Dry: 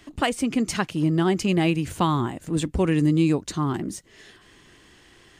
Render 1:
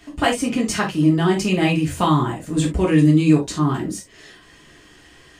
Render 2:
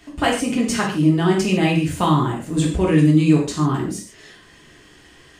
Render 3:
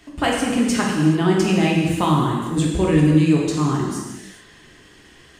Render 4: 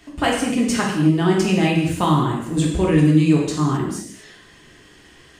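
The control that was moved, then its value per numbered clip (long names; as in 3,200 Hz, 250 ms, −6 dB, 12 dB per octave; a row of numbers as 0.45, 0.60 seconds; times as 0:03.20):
reverb whose tail is shaped and stops, gate: 100, 180, 470, 290 milliseconds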